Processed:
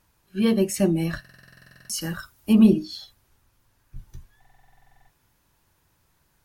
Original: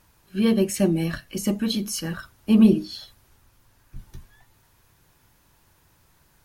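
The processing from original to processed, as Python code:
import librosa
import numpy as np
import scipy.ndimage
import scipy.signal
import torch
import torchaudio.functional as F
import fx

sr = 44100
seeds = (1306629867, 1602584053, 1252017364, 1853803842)

y = fx.noise_reduce_blind(x, sr, reduce_db=6)
y = fx.high_shelf(y, sr, hz=5900.0, db=10.0, at=(2.01, 2.53))
y = fx.buffer_glitch(y, sr, at_s=(1.2, 4.4), block=2048, repeats=14)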